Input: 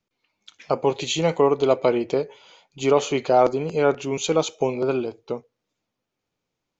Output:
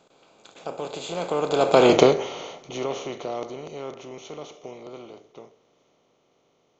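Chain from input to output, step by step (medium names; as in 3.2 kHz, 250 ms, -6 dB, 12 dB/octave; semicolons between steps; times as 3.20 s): spectral levelling over time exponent 0.4; Doppler pass-by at 1.93 s, 20 m/s, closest 2.2 m; trim +4.5 dB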